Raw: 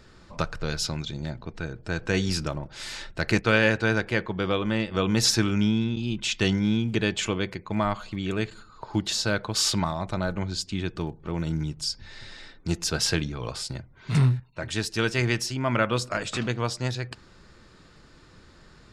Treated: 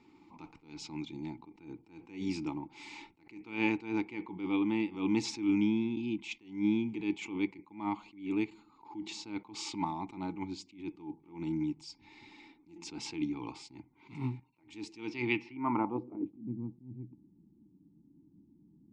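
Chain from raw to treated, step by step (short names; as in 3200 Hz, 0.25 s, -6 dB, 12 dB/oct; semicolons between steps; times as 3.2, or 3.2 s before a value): low-pass sweep 7600 Hz -> 190 Hz, 14.98–16.47; vowel filter u; attack slew limiter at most 140 dB/s; gain +6.5 dB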